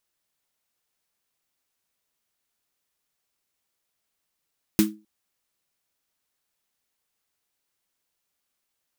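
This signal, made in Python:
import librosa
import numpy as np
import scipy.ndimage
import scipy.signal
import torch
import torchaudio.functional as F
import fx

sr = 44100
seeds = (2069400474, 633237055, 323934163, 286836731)

y = fx.drum_snare(sr, seeds[0], length_s=0.26, hz=210.0, second_hz=320.0, noise_db=-7, noise_from_hz=1000.0, decay_s=0.3, noise_decay_s=0.18)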